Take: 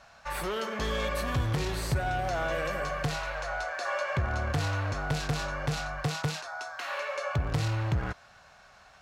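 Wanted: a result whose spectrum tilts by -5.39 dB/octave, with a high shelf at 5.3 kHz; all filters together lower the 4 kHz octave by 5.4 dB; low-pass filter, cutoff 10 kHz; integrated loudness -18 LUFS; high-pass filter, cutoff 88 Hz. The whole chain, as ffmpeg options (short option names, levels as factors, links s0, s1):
-af "highpass=88,lowpass=10000,equalizer=f=4000:t=o:g=-8.5,highshelf=f=5300:g=3.5,volume=5.62"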